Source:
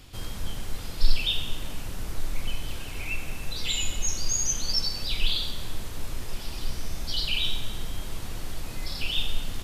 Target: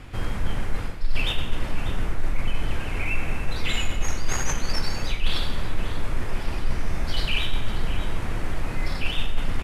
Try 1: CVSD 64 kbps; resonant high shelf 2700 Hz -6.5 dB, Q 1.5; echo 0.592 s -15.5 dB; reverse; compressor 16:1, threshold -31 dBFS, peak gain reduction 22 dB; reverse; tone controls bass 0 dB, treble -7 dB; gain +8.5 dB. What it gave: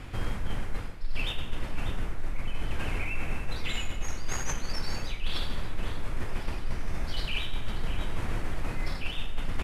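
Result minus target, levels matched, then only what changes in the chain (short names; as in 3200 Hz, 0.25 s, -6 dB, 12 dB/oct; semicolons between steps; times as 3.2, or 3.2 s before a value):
compressor: peak gain reduction +8 dB
change: compressor 16:1, threshold -22.5 dBFS, peak gain reduction 14 dB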